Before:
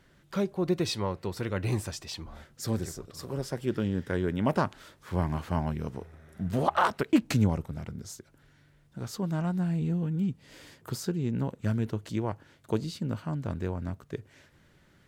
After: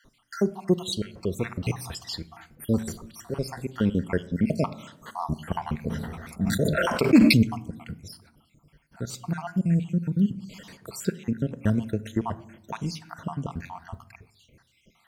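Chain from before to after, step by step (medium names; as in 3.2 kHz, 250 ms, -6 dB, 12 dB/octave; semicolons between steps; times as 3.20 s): random holes in the spectrogram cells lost 62%; band-stop 3.6 kHz, Q 23; on a send at -11.5 dB: peaking EQ 400 Hz -3 dB + reverberation RT60 0.90 s, pre-delay 4 ms; 5.87–7.42 s: on the sum: decay stretcher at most 35 dB/s; trim +6.5 dB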